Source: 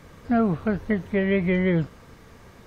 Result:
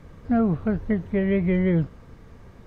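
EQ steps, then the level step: tilt -2 dB/oct; -3.5 dB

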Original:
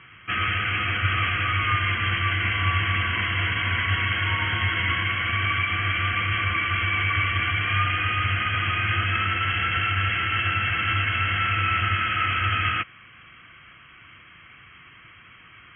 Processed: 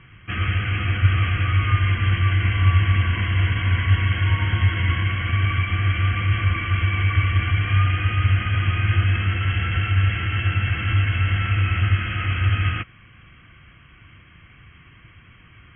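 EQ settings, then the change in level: tilt -4 dB/oct; high shelf 2400 Hz +10.5 dB; notch 1300 Hz, Q 16; -4.0 dB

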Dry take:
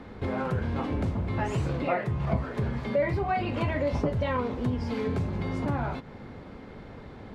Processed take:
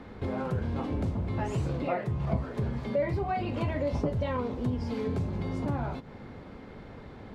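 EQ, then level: dynamic EQ 1800 Hz, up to -5 dB, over -46 dBFS, Q 0.74; -1.5 dB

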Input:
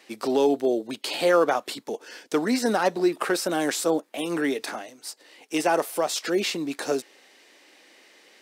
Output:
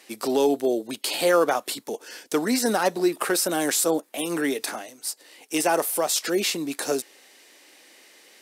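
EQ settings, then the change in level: bell 12000 Hz +11.5 dB 1.3 oct; 0.0 dB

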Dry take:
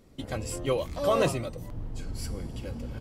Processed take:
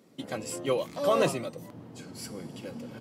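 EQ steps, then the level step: HPF 150 Hz 24 dB/oct; 0.0 dB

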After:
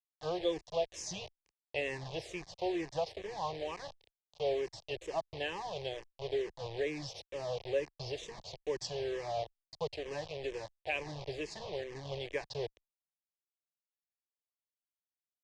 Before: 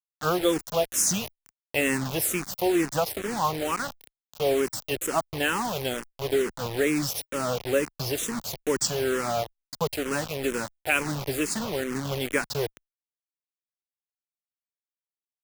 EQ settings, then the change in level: LPF 4900 Hz 24 dB/oct; dynamic EQ 1700 Hz, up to +6 dB, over -48 dBFS, Q 4.8; fixed phaser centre 580 Hz, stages 4; -7.5 dB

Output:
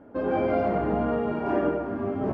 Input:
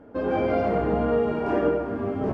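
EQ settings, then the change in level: low shelf 80 Hz -7 dB; high shelf 3500 Hz -9.5 dB; notch 460 Hz, Q 12; 0.0 dB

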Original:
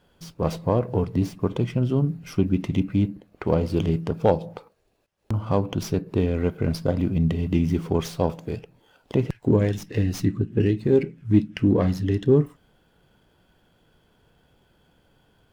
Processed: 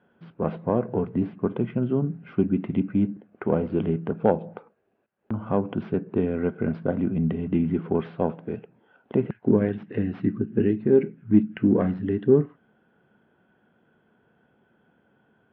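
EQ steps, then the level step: air absorption 310 m; speaker cabinet 140–3100 Hz, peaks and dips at 220 Hz +8 dB, 390 Hz +4 dB, 730 Hz +3 dB, 1500 Hz +7 dB; -2.5 dB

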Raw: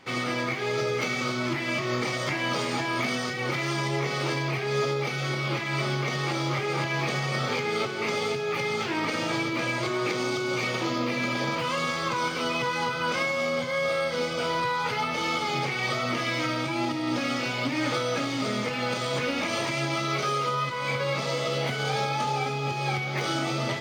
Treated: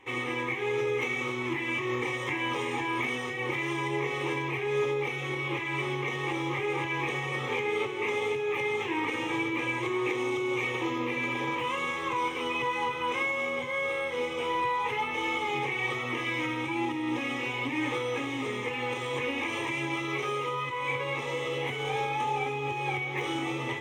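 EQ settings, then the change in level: high shelf 10000 Hz -9 dB; fixed phaser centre 950 Hz, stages 8; 0.0 dB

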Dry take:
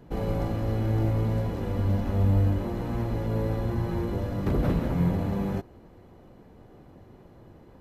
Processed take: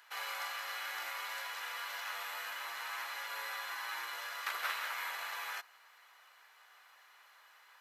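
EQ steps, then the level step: HPF 1300 Hz 24 dB/oct; +8.0 dB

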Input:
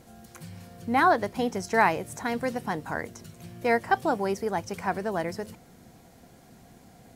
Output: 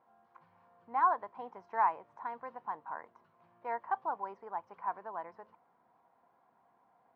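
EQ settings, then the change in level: band-pass 1000 Hz, Q 5; air absorption 230 m; 0.0 dB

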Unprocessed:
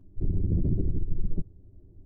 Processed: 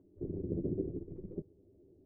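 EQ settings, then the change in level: band-pass 440 Hz, Q 2.1; +4.0 dB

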